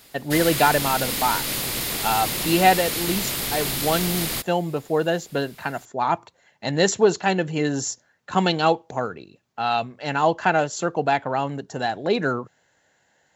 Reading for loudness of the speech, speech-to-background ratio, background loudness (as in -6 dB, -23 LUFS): -23.5 LUFS, 1.0 dB, -24.5 LUFS